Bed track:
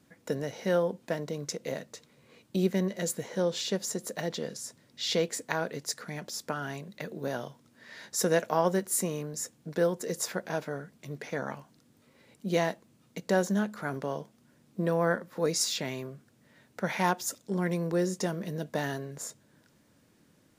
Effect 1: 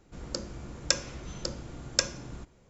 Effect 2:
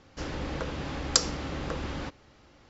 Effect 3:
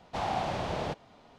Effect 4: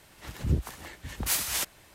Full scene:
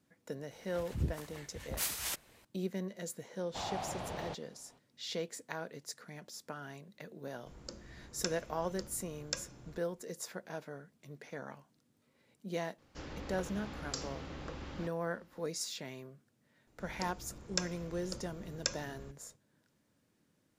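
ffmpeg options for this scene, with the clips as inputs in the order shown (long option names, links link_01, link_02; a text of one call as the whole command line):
ffmpeg -i bed.wav -i cue0.wav -i cue1.wav -i cue2.wav -i cue3.wav -filter_complex "[1:a]asplit=2[link_01][link_02];[0:a]volume=-10.5dB[link_03];[2:a]alimiter=limit=-11.5dB:level=0:latency=1:release=41[link_04];[4:a]atrim=end=1.94,asetpts=PTS-STARTPTS,volume=-8dB,afade=type=in:duration=0.004:curve=hsin,afade=type=out:start_time=1.936:duration=0.004:curve=hsin,adelay=510[link_05];[3:a]atrim=end=1.38,asetpts=PTS-STARTPTS,volume=-8.5dB,afade=type=in:duration=0.004:curve=hsin,afade=type=out:start_time=1.376:duration=0.004:curve=hsin,adelay=150381S[link_06];[link_01]atrim=end=2.69,asetpts=PTS-STARTPTS,volume=-12dB,afade=type=in:duration=0.004:curve=hsin,afade=type=out:start_time=2.686:duration=0.004:curve=hsin,adelay=7340[link_07];[link_04]atrim=end=2.69,asetpts=PTS-STARTPTS,volume=-10.5dB,afade=type=in:duration=0.004:curve=hsin,afade=type=out:start_time=2.686:duration=0.004:curve=hsin,adelay=12780[link_08];[link_02]atrim=end=2.69,asetpts=PTS-STARTPTS,volume=-9dB,afade=type=in:duration=0.004:curve=hsin,afade=type=out:start_time=2.686:duration=0.004:curve=hsin,adelay=16670[link_09];[link_03][link_05][link_06][link_07][link_08][link_09]amix=inputs=6:normalize=0" out.wav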